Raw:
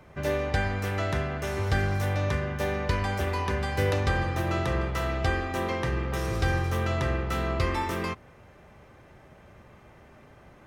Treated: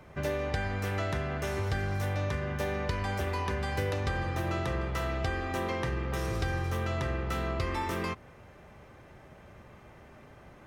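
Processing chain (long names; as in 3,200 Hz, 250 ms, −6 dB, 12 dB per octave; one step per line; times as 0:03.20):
downward compressor 3 to 1, threshold −29 dBFS, peak gain reduction 7 dB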